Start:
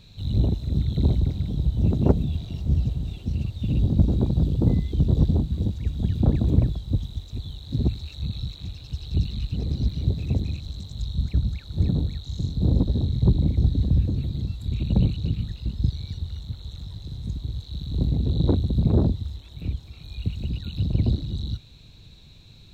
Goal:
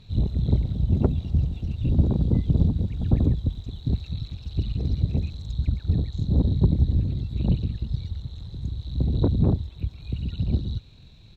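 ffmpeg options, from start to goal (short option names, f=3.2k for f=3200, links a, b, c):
-af "aemphasis=mode=reproduction:type=cd,atempo=2"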